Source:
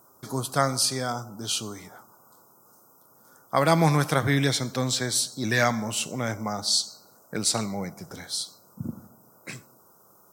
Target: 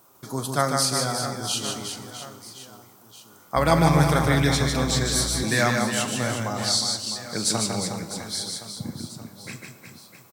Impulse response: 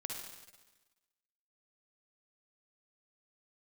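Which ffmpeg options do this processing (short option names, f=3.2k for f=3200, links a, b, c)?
-filter_complex "[0:a]acrusher=bits=9:mix=0:aa=0.000001,aecho=1:1:150|360|654|1066|1642:0.631|0.398|0.251|0.158|0.1,asplit=2[a][b];[1:a]atrim=start_sample=2205,adelay=42[c];[b][c]afir=irnorm=-1:irlink=0,volume=-11.5dB[d];[a][d]amix=inputs=2:normalize=0,asettb=1/sr,asplit=3[e][f][g];[e]atrim=end=3.564[h];[f]atrim=start=3.56:end=5.44,asetpts=PTS-STARTPTS,afade=t=in:d=0.004:c=qsin,afade=t=out:st=1.876:d=0.004:c=qsin,aeval=exprs='val(0)+0.0355*(sin(2*PI*60*n/s)+sin(2*PI*2*60*n/s)/2+sin(2*PI*3*60*n/s)/3+sin(2*PI*4*60*n/s)/4+sin(2*PI*5*60*n/s)/5)':c=same[i];[g]atrim=start=5.436[j];[h][i]acrossfade=d=0.004:c1=hsin:c2=qsin[k];[k][j]acrossfade=d=0.004:c1=qsin:c2=hsin"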